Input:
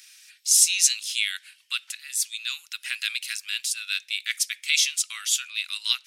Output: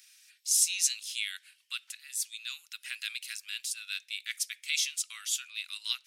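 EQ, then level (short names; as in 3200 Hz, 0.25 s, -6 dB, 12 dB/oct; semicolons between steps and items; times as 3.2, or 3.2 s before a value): high shelf 10000 Hz +4 dB; -9.0 dB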